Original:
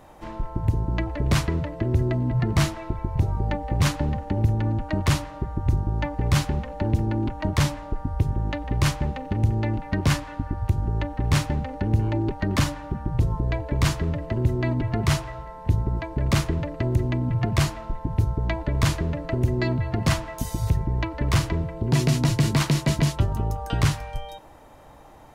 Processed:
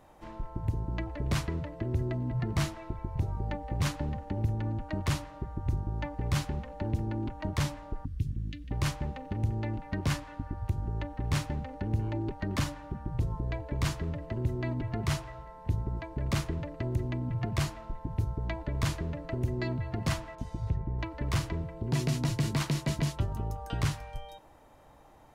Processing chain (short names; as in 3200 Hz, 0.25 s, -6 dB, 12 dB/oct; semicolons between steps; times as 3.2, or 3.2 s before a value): 8.05–8.71 Chebyshev band-stop 230–2900 Hz, order 2; 20.35–20.99 tape spacing loss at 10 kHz 22 dB; gain -8.5 dB